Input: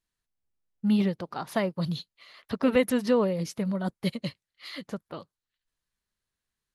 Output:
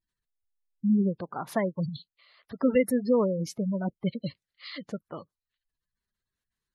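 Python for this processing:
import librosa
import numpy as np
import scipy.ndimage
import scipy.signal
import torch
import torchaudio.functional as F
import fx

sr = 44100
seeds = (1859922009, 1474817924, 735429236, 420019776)

y = fx.level_steps(x, sr, step_db=12, at=(1.89, 2.61))
y = fx.spec_gate(y, sr, threshold_db=-20, keep='strong')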